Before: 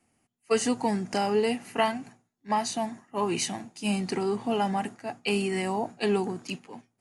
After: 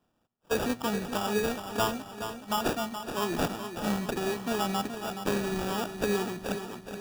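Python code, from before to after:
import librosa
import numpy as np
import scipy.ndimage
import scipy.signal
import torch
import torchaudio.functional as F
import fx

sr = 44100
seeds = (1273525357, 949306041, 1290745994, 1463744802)

p1 = fx.peak_eq(x, sr, hz=4700.0, db=13.0, octaves=0.4)
p2 = fx.rider(p1, sr, range_db=10, speed_s=0.5)
p3 = p1 + F.gain(torch.from_numpy(p2), -2.5).numpy()
p4 = fx.high_shelf(p3, sr, hz=9000.0, db=4.5)
p5 = fx.sample_hold(p4, sr, seeds[0], rate_hz=2100.0, jitter_pct=0)
p6 = fx.echo_feedback(p5, sr, ms=423, feedback_pct=53, wet_db=-9.0)
y = F.gain(torch.from_numpy(p6), -8.5).numpy()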